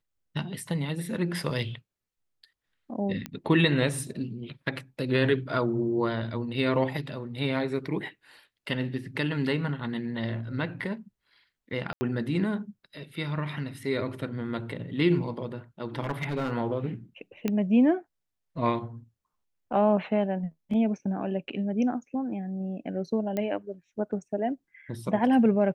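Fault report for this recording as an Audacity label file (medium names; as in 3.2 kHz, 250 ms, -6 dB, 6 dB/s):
3.260000	3.260000	pop -18 dBFS
11.930000	12.010000	dropout 80 ms
16.010000	16.510000	clipped -24.5 dBFS
17.480000	17.480000	pop -15 dBFS
23.370000	23.370000	pop -17 dBFS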